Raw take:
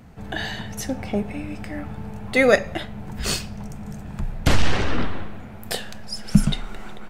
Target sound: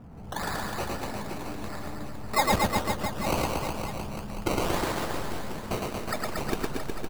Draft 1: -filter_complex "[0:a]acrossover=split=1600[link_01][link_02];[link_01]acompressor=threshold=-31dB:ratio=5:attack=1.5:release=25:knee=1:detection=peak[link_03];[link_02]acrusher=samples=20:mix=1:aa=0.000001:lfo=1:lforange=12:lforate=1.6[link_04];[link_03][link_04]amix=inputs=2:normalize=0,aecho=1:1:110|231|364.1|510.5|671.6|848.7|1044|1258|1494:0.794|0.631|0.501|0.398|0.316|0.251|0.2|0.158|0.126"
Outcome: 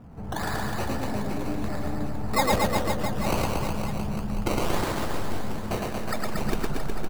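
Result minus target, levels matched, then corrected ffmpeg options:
downward compressor: peak gain reduction −9 dB
-filter_complex "[0:a]acrossover=split=1600[link_01][link_02];[link_01]acompressor=threshold=-42dB:ratio=5:attack=1.5:release=25:knee=1:detection=peak[link_03];[link_02]acrusher=samples=20:mix=1:aa=0.000001:lfo=1:lforange=12:lforate=1.6[link_04];[link_03][link_04]amix=inputs=2:normalize=0,aecho=1:1:110|231|364.1|510.5|671.6|848.7|1044|1258|1494:0.794|0.631|0.501|0.398|0.316|0.251|0.2|0.158|0.126"

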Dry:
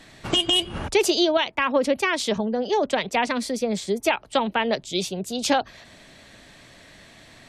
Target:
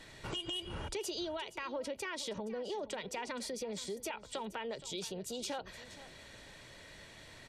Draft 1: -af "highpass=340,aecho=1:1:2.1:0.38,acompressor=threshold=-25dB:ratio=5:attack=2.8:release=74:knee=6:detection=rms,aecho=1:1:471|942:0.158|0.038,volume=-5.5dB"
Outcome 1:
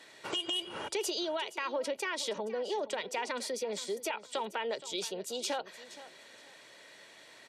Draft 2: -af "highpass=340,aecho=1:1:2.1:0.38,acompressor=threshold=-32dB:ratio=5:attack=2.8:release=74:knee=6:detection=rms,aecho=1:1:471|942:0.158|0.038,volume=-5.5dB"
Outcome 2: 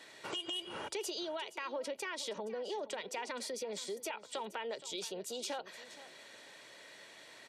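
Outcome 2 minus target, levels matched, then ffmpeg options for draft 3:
250 Hz band −4.0 dB
-af "aecho=1:1:2.1:0.38,acompressor=threshold=-32dB:ratio=5:attack=2.8:release=74:knee=6:detection=rms,aecho=1:1:471|942:0.158|0.038,volume=-5.5dB"

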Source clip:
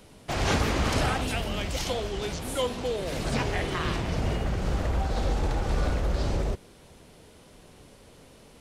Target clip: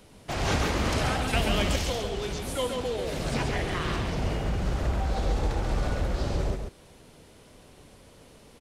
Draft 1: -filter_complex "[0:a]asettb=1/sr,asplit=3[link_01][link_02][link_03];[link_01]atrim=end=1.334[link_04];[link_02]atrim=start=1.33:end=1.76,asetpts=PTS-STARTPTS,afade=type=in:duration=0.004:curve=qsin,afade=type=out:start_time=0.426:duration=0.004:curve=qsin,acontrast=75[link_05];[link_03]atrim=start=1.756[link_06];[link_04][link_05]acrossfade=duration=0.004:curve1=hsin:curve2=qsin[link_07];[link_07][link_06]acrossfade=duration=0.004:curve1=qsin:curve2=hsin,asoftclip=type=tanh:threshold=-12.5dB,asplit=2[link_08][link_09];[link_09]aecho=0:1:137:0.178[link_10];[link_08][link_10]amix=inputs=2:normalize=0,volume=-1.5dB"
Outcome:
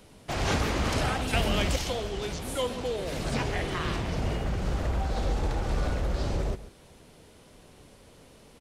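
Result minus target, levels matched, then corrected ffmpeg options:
echo-to-direct −10 dB
-filter_complex "[0:a]asettb=1/sr,asplit=3[link_01][link_02][link_03];[link_01]atrim=end=1.334[link_04];[link_02]atrim=start=1.33:end=1.76,asetpts=PTS-STARTPTS,afade=type=in:duration=0.004:curve=qsin,afade=type=out:start_time=0.426:duration=0.004:curve=qsin,acontrast=75[link_05];[link_03]atrim=start=1.756[link_06];[link_04][link_05]acrossfade=duration=0.004:curve1=hsin:curve2=qsin[link_07];[link_07][link_06]acrossfade=duration=0.004:curve1=qsin:curve2=hsin,asoftclip=type=tanh:threshold=-12.5dB,asplit=2[link_08][link_09];[link_09]aecho=0:1:137:0.562[link_10];[link_08][link_10]amix=inputs=2:normalize=0,volume=-1.5dB"

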